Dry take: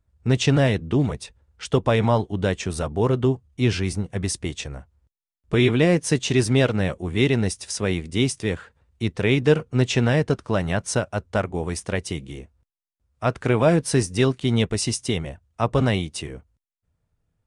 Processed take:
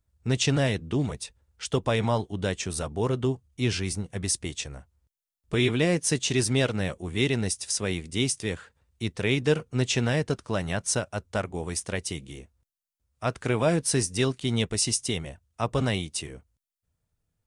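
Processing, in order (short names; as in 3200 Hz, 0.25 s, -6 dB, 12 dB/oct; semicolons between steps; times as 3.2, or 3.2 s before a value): high shelf 3800 Hz +10 dB; gain -6 dB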